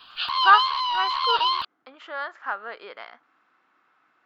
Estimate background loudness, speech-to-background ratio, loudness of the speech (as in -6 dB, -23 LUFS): -23.0 LUFS, -1.5 dB, -24.5 LUFS